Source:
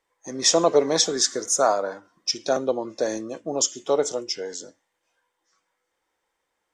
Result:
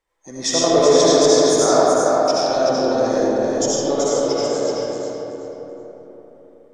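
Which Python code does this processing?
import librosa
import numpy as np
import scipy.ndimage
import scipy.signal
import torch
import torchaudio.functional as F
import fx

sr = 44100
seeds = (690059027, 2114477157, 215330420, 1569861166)

y = fx.low_shelf(x, sr, hz=120.0, db=11.0)
y = fx.echo_feedback(y, sr, ms=380, feedback_pct=24, wet_db=-5)
y = fx.rev_freeverb(y, sr, rt60_s=4.0, hf_ratio=0.35, predelay_ms=40, drr_db=-8.5)
y = y * librosa.db_to_amplitude(-4.0)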